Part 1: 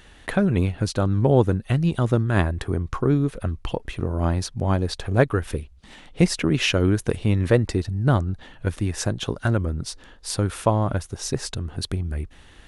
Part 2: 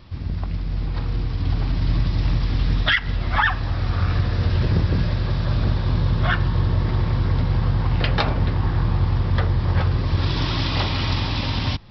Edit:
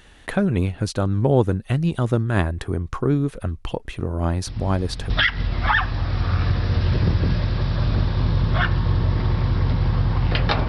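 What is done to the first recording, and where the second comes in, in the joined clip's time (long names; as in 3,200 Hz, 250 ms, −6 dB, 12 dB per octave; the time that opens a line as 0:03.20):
part 1
0:04.47: mix in part 2 from 0:02.16 0.63 s −12.5 dB
0:05.10: continue with part 2 from 0:02.79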